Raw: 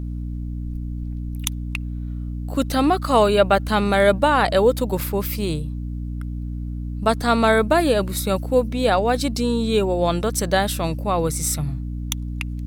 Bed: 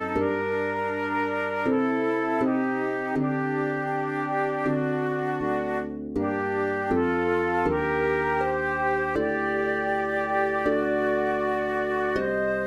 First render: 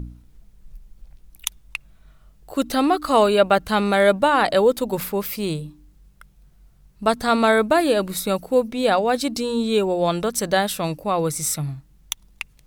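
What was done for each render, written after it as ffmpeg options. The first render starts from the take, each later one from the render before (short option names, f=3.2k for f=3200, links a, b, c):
-af "bandreject=f=60:t=h:w=4,bandreject=f=120:t=h:w=4,bandreject=f=180:t=h:w=4,bandreject=f=240:t=h:w=4,bandreject=f=300:t=h:w=4"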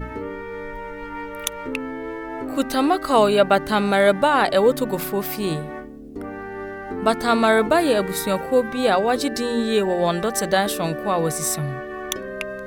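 -filter_complex "[1:a]volume=-6dB[a];[0:a][a]amix=inputs=2:normalize=0"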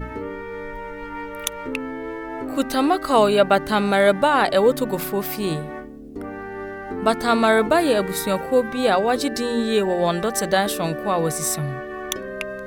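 -af anull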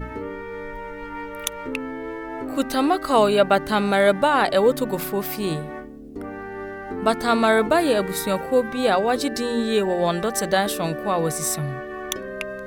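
-af "volume=-1dB"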